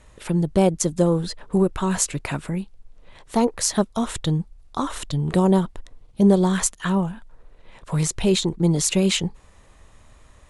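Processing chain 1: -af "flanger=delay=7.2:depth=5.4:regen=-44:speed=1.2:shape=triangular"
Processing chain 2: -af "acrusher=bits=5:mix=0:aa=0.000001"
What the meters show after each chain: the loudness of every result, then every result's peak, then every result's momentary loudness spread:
-26.0, -22.0 LUFS; -6.0, -2.0 dBFS; 12, 11 LU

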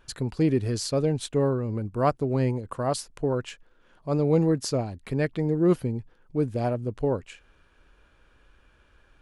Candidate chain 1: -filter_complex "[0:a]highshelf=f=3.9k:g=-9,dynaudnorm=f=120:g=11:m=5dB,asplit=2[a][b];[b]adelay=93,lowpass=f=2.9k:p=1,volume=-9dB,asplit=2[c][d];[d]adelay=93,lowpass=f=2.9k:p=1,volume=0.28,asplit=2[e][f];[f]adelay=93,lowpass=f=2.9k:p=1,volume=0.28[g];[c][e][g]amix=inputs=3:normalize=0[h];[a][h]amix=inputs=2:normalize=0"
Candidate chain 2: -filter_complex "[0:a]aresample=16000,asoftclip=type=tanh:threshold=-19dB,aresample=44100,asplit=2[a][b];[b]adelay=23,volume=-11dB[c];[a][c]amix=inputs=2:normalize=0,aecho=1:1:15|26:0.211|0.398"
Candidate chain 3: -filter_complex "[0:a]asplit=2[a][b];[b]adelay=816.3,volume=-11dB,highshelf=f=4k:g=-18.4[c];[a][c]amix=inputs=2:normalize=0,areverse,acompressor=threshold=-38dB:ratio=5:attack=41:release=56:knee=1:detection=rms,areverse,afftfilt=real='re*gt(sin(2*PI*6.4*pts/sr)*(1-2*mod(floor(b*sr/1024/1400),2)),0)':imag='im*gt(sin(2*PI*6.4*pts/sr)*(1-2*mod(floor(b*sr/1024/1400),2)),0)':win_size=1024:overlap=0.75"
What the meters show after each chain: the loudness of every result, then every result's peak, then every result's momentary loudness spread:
-22.0, -28.0, -41.0 LUFS; -4.5, -14.0, -23.0 dBFS; 8, 7, 6 LU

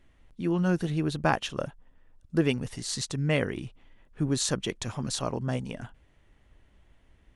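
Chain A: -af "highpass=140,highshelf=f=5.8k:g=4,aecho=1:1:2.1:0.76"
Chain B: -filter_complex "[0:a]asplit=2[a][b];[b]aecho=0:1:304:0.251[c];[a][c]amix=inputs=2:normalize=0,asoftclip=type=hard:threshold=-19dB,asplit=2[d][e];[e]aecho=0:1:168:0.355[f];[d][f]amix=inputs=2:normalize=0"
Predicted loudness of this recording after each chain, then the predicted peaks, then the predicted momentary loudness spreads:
-28.5, -29.5 LUFS; -8.5, -16.5 dBFS; 12, 13 LU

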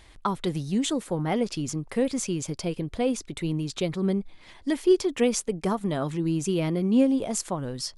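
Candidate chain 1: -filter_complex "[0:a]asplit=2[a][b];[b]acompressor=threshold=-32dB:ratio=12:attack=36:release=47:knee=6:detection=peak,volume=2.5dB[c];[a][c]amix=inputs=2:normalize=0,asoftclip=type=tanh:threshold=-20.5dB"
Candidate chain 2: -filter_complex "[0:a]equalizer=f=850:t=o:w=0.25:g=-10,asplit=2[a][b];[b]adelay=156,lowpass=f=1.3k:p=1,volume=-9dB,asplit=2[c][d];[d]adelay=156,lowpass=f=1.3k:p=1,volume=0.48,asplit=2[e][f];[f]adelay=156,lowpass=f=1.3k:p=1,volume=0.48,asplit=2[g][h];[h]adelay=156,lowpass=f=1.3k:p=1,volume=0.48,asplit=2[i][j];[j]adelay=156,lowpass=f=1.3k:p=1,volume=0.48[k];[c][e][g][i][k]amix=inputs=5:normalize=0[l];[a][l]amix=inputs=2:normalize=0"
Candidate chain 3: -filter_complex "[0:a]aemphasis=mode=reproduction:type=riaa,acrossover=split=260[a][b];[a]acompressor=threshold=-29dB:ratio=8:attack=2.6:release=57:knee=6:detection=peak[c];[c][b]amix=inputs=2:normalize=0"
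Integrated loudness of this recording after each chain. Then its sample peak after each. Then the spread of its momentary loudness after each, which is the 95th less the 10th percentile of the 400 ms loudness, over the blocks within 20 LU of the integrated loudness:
-26.5, -26.5, -24.5 LUFS; -20.5, -10.0, -7.5 dBFS; 4, 8, 10 LU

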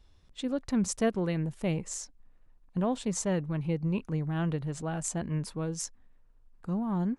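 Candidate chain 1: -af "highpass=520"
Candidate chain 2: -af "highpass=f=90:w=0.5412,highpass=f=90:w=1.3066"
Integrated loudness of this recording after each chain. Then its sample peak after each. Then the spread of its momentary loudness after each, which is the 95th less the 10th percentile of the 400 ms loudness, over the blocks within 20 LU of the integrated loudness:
-38.5, -32.0 LUFS; -16.0, -15.5 dBFS; 10, 10 LU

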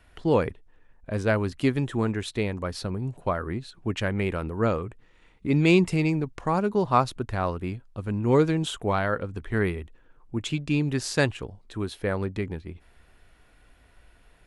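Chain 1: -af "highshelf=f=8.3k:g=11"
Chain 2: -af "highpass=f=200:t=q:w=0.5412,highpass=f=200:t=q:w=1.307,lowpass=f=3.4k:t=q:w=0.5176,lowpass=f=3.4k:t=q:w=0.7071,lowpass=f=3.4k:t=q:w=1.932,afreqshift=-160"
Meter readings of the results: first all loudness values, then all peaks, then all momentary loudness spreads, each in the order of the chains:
-26.5, -28.5 LUFS; -6.5, -5.5 dBFS; 12, 14 LU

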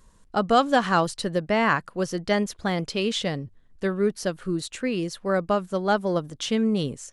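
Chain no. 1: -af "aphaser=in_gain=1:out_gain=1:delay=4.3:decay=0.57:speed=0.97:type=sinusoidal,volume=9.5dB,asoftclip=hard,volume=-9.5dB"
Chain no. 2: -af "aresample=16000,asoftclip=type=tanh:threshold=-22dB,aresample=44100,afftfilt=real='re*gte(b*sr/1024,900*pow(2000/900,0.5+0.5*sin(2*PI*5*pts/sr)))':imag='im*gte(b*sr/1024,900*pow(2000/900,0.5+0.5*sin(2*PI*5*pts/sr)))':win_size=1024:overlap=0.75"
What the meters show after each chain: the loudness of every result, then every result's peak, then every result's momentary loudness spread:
-23.0, -36.0 LUFS; -9.5, -20.0 dBFS; 11, 11 LU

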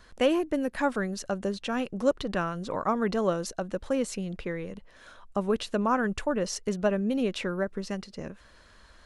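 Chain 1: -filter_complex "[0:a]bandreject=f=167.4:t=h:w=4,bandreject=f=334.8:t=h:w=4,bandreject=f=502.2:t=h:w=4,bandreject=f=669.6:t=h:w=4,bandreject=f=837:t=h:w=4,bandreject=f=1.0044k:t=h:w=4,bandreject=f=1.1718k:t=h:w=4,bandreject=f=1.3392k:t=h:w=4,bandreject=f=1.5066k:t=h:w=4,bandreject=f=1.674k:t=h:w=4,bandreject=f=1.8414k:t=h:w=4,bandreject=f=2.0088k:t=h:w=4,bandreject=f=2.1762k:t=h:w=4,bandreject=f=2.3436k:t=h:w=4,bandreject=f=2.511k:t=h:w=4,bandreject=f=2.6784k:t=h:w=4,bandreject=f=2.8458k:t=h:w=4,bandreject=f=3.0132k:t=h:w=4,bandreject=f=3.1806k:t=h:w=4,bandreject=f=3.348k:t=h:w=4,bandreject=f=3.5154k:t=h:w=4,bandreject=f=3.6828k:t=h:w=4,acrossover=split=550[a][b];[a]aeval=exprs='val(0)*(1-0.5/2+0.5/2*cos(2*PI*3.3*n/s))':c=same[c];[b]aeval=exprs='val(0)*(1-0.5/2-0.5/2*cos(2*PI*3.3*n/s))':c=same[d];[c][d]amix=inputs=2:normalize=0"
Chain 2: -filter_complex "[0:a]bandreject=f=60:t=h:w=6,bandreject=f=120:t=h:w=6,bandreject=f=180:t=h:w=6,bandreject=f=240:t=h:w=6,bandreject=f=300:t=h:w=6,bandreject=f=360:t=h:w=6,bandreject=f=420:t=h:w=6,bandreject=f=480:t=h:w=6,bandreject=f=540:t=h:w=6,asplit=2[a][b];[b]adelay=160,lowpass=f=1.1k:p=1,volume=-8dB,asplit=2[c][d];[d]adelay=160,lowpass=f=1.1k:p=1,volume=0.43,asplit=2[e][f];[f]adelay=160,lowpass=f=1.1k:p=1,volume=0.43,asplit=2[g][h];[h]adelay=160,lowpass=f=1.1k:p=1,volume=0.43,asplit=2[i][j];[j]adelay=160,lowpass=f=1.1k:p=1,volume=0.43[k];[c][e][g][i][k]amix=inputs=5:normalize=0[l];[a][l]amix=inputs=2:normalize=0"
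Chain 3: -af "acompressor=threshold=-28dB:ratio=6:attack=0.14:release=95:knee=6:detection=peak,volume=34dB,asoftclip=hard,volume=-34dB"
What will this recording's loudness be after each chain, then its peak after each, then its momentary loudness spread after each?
-31.5, -29.5, -38.5 LUFS; -13.5, -11.0, -34.0 dBFS; 10, 10, 8 LU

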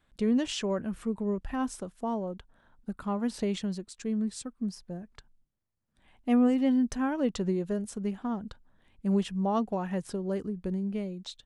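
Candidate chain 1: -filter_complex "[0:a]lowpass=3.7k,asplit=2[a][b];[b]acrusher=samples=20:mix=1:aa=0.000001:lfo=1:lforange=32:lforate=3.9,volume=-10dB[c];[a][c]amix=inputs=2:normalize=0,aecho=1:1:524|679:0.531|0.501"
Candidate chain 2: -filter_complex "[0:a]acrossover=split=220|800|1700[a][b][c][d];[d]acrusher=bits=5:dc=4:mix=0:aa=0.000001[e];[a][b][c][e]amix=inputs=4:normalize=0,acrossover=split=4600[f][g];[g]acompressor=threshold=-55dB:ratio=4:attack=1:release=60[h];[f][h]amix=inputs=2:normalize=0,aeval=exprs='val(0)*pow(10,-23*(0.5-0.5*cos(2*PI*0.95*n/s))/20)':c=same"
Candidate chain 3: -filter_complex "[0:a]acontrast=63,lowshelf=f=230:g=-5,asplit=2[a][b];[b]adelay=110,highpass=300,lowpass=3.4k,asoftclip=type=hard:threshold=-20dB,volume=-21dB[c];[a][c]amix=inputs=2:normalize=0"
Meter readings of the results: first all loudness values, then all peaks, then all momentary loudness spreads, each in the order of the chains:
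-27.5, -34.5, -26.5 LUFS; -12.0, -15.0, -12.0 dBFS; 12, 21, 11 LU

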